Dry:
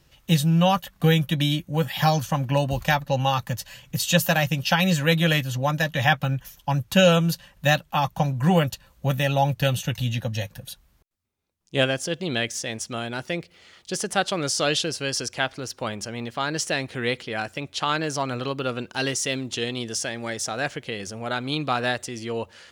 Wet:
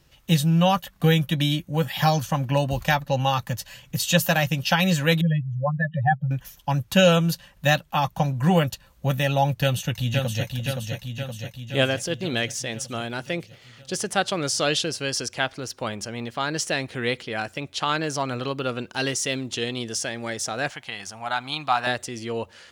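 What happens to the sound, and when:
5.21–6.31 spectral contrast raised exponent 3.1
9.6–10.55 echo throw 0.52 s, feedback 65%, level -4 dB
20.7–21.87 resonant low shelf 620 Hz -8 dB, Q 3

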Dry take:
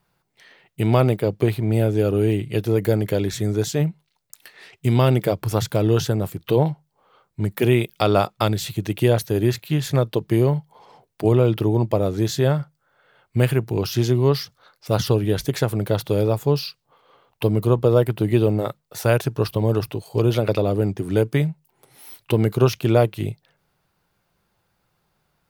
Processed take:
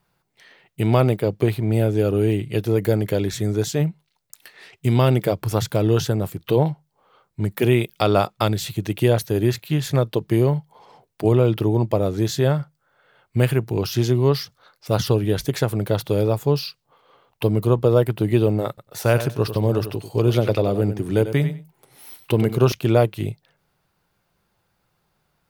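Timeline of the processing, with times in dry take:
18.68–22.72 feedback echo 95 ms, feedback 17%, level -11 dB

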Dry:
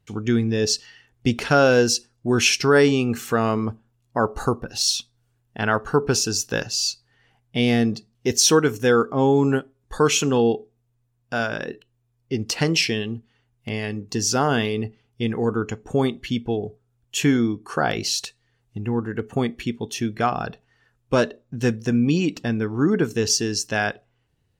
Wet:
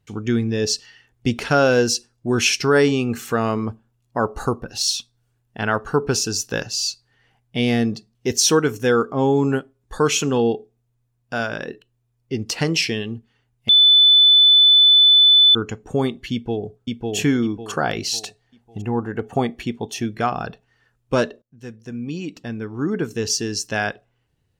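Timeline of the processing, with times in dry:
13.69–15.55 bleep 3500 Hz -8.5 dBFS
16.32–17.16 echo throw 0.55 s, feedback 35%, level -2 dB
18.12–20.05 bell 740 Hz +9 dB 0.73 oct
21.42–23.74 fade in, from -22.5 dB

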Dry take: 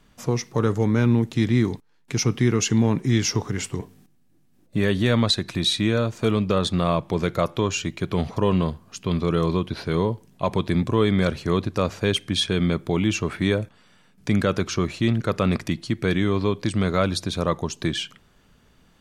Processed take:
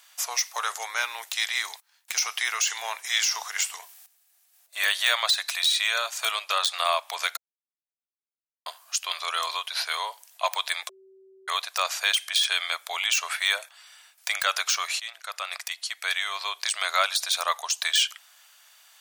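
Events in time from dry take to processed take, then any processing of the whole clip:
7.37–8.66 mute
10.89–11.48 bleep 383 Hz -17.5 dBFS
15–16.84 fade in, from -13 dB
whole clip: de-esser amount 70%; elliptic high-pass 670 Hz, stop band 80 dB; tilt +4.5 dB/oct; gain +2 dB

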